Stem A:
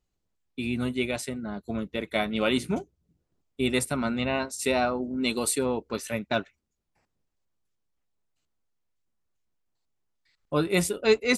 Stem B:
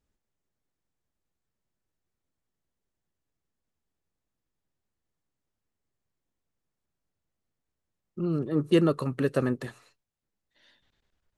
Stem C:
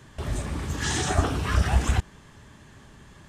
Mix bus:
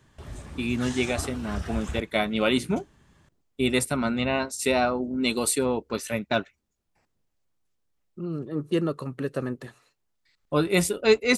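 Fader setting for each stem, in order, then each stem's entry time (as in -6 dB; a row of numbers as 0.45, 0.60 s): +2.0, -3.5, -10.5 dB; 0.00, 0.00, 0.00 s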